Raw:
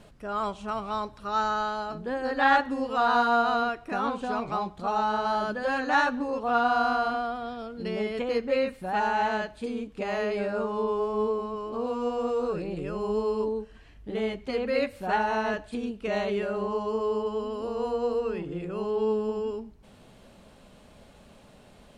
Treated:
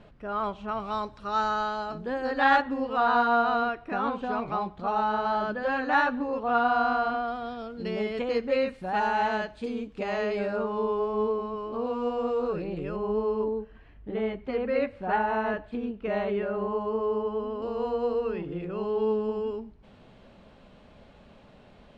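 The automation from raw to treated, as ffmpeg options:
ffmpeg -i in.wav -af "asetnsamples=nb_out_samples=441:pad=0,asendcmd='0.8 lowpass f 6100;2.62 lowpass f 3300;7.28 lowpass f 6100;10.56 lowpass f 3800;12.96 lowpass f 2200;17.62 lowpass f 3700',lowpass=3100" out.wav

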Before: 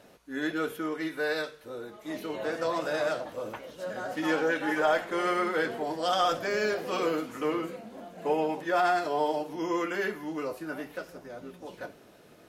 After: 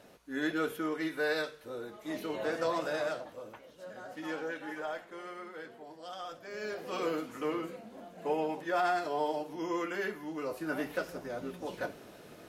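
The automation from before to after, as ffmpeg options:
ffmpeg -i in.wav -af "volume=19dB,afade=type=out:start_time=2.63:duration=0.84:silence=0.354813,afade=type=out:start_time=4.44:duration=0.86:silence=0.473151,afade=type=in:start_time=6.43:duration=0.65:silence=0.237137,afade=type=in:start_time=10.4:duration=0.46:silence=0.398107" out.wav

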